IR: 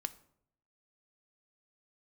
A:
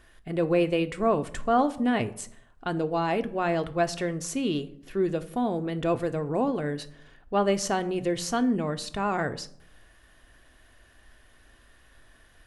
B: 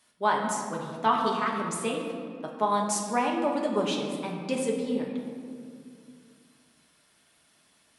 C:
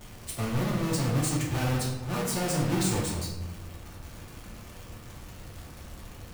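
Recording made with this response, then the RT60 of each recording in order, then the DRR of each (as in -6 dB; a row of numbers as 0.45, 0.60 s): A; 0.70, 2.2, 1.2 s; 8.5, -1.5, -4.0 dB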